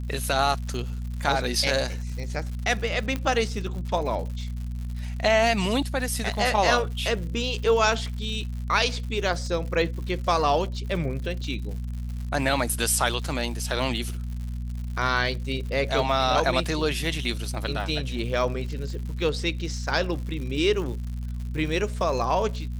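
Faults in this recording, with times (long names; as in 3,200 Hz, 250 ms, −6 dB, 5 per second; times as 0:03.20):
surface crackle 140 per second −35 dBFS
mains hum 60 Hz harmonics 4 −31 dBFS
0:03.16: click −15 dBFS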